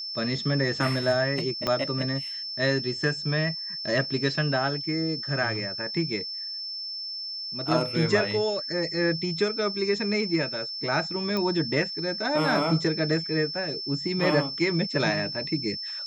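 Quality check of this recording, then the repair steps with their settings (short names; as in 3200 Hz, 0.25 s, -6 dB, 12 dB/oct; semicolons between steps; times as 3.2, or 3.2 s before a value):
tone 5300 Hz -32 dBFS
1.67 pop -12 dBFS
11.37 pop -16 dBFS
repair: de-click; notch 5300 Hz, Q 30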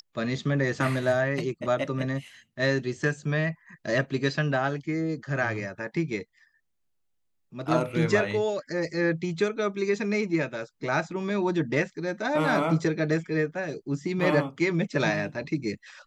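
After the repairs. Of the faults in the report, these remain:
1.67 pop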